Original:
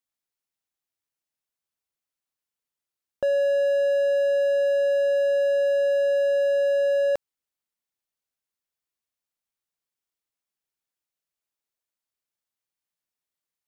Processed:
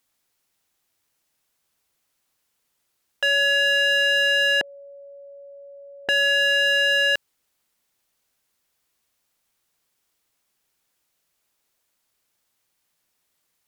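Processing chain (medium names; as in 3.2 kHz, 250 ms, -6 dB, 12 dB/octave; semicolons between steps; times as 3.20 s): 4.61–6.09 s: inverse Chebyshev low-pass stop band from 1.2 kHz, stop band 80 dB; sine folder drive 12 dB, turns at -16.5 dBFS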